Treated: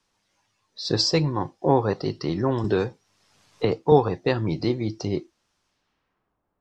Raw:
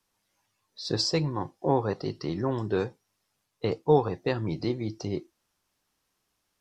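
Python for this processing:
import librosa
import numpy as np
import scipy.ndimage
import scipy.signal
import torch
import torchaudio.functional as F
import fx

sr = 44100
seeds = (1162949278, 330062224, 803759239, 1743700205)

y = fx.filter_sweep_lowpass(x, sr, from_hz=6600.0, to_hz=920.0, start_s=5.66, end_s=6.4, q=0.86)
y = fx.band_squash(y, sr, depth_pct=70, at=(2.64, 3.92))
y = F.gain(torch.from_numpy(y), 5.0).numpy()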